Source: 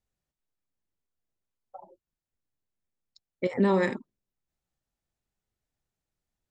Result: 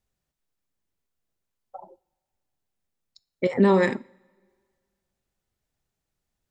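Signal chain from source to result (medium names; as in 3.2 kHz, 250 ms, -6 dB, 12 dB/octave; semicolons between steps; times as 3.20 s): two-slope reverb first 0.49 s, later 2 s, from -20 dB, DRR 18.5 dB; trim +4.5 dB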